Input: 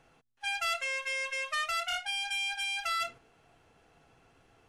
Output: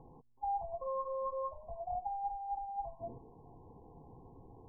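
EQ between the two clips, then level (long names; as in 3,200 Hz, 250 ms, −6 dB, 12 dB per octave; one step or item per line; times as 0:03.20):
linear-phase brick-wall low-pass 1,100 Hz
high-frequency loss of the air 480 metres
parametric band 630 Hz −14 dB 0.28 octaves
+11.5 dB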